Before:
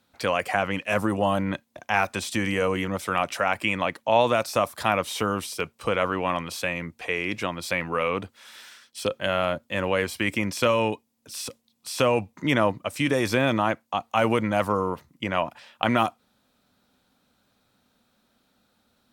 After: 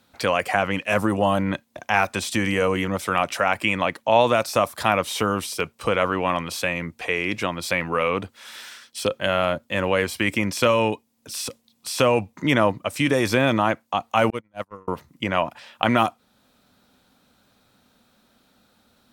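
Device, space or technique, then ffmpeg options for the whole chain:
parallel compression: -filter_complex "[0:a]asplit=2[a][b];[b]acompressor=threshold=-40dB:ratio=12,volume=-5dB[c];[a][c]amix=inputs=2:normalize=0,asettb=1/sr,asplit=3[d][e][f];[d]atrim=end=14.304[g];[e]atrim=start=14.3:end=14.88,asetpts=PTS-STARTPTS,afade=t=in:d=0.004:c=qsin,afade=t=out:st=0.576:d=0.004:c=qsin,agate=range=-45dB:threshold=-18dB:ratio=16:detection=peak[h];[f]atrim=start=14.876[i];[g][h]acrossfade=d=0.004:c1=hsin:c2=qsin[j];[j][i]acrossfade=d=0.004:c1=qsin:c2=hsin,volume=2.5dB"

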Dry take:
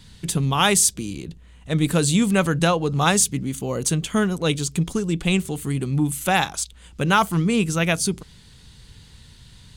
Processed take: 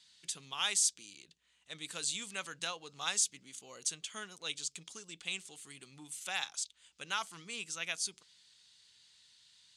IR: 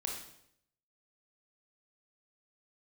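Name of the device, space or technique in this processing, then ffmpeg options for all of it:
piezo pickup straight into a mixer: -af "lowpass=6.1k,lowpass=9.4k,aderivative,volume=-4dB"

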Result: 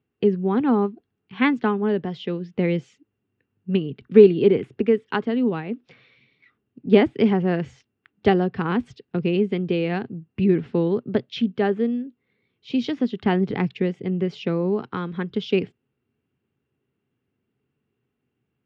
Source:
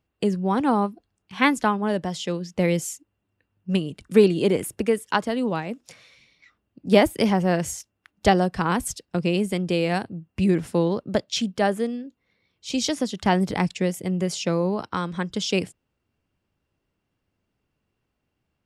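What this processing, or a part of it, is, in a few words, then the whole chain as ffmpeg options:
guitar cabinet: -af "highpass=93,equalizer=f=130:t=q:w=4:g=8,equalizer=f=240:t=q:w=4:g=7,equalizer=f=410:t=q:w=4:g=9,equalizer=f=600:t=q:w=4:g=-7,equalizer=f=970:t=q:w=4:g=-4,lowpass=f=3.4k:w=0.5412,lowpass=f=3.4k:w=1.3066,volume=-2dB"

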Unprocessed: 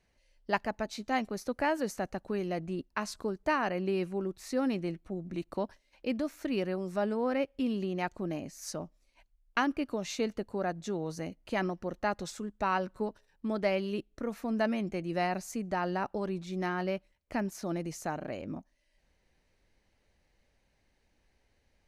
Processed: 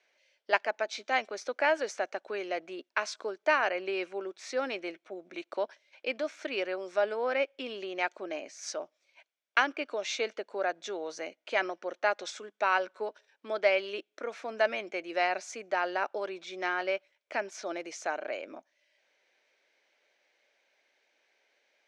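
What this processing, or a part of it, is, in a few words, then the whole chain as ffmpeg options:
phone speaker on a table: -af "highpass=f=370:w=0.5412,highpass=f=370:w=1.3066,equalizer=f=620:t=q:w=4:g=5,equalizer=f=1.5k:t=q:w=4:g=7,equalizer=f=2.3k:t=q:w=4:g=9,equalizer=f=3.4k:t=q:w=4:g=8,equalizer=f=5.7k:t=q:w=4:g=4,lowpass=f=7.5k:w=0.5412,lowpass=f=7.5k:w=1.3066"

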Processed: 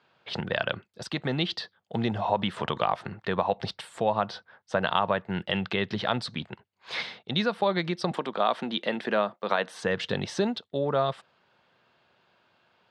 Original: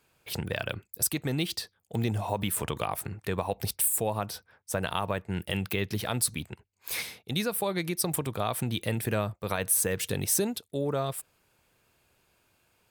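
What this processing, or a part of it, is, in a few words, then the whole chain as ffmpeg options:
kitchen radio: -filter_complex "[0:a]asettb=1/sr,asplit=3[a][b][c];[a]atrim=end=8.114[d];[b]atrim=start=8.11:end=9.83,asetpts=PTS-STARTPTS,afade=t=in:d=0.004:c=qsin,afade=t=out:st=1.716:d=0.004:c=qsin,highpass=f=210:w=0.5412,highpass=f=210:w=1.3066[e];[c]atrim=start=9.826[f];[d][e]acrossfade=d=0.004:c1=hsin:c2=qsin[g];[g][f]acrossfade=d=0.004:c1=qsin:c2=hsin,highpass=200,equalizer=f=300:t=q:w=4:g=-8,equalizer=f=440:t=q:w=4:g=-5,equalizer=f=2.4k:t=q:w=4:g=-8,lowpass=f=3.9k:w=0.5412,lowpass=f=3.9k:w=1.3066,volume=7dB"

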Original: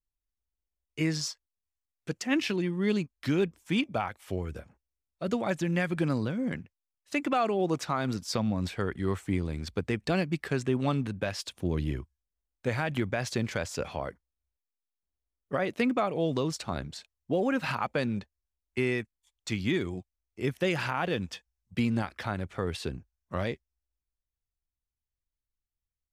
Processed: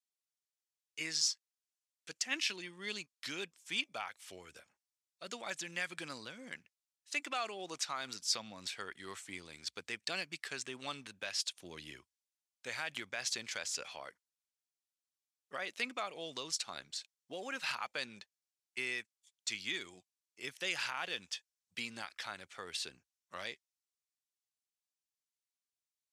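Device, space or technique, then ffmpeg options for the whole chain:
piezo pickup straight into a mixer: -af "lowpass=6.9k,aderivative,volume=6.5dB"

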